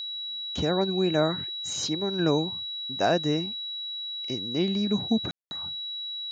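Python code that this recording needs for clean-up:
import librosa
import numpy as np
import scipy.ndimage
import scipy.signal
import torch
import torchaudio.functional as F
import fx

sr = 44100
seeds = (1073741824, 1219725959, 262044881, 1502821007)

y = fx.notch(x, sr, hz=3900.0, q=30.0)
y = fx.fix_ambience(y, sr, seeds[0], print_start_s=3.52, print_end_s=4.02, start_s=5.31, end_s=5.51)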